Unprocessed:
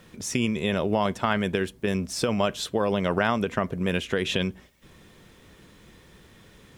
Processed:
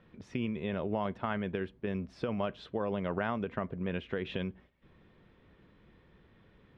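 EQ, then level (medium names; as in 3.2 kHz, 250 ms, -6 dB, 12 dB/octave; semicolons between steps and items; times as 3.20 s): low-pass 11 kHz; distance through air 370 m; -8.0 dB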